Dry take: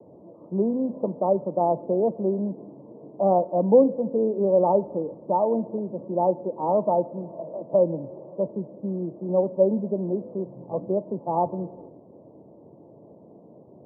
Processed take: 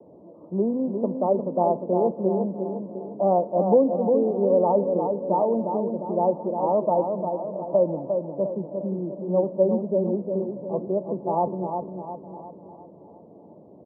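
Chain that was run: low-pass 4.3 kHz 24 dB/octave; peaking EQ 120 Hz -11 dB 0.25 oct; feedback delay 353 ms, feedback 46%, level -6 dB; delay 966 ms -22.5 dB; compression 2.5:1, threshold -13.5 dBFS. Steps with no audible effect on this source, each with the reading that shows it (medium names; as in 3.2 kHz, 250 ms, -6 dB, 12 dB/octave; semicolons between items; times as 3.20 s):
low-pass 4.3 kHz: input has nothing above 1.1 kHz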